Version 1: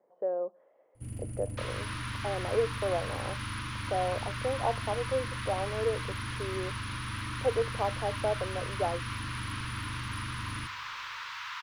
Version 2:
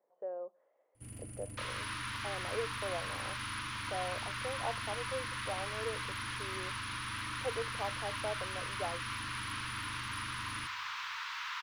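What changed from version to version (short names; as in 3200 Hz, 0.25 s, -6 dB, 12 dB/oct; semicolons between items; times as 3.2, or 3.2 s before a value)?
speech -6.0 dB; master: add low shelf 350 Hz -10.5 dB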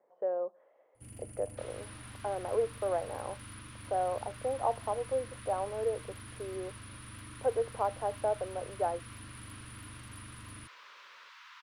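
speech +8.0 dB; second sound -12.0 dB; reverb: off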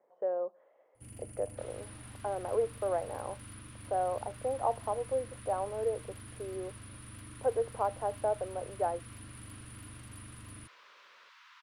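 second sound -4.5 dB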